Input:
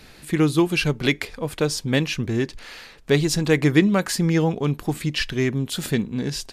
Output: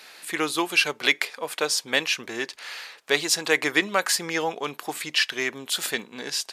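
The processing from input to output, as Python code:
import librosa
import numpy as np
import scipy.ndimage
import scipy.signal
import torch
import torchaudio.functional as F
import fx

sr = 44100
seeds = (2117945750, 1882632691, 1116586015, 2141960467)

y = scipy.signal.sosfilt(scipy.signal.butter(2, 710.0, 'highpass', fs=sr, output='sos'), x)
y = F.gain(torch.from_numpy(y), 3.5).numpy()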